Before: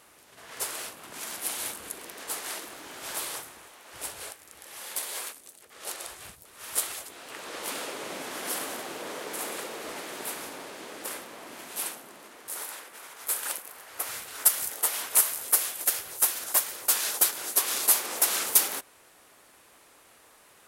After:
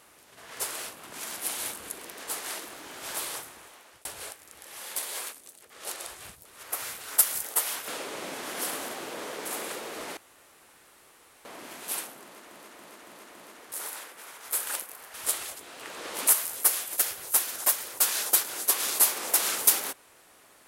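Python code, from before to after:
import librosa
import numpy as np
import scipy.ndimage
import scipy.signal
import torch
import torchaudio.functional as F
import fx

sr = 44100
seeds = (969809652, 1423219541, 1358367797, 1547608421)

y = fx.edit(x, sr, fx.fade_out_span(start_s=3.76, length_s=0.29),
    fx.swap(start_s=6.63, length_s=1.13, other_s=13.9, other_length_s=1.25),
    fx.room_tone_fill(start_s=10.05, length_s=1.28),
    fx.repeat(start_s=12.11, length_s=0.28, count=5), tone=tone)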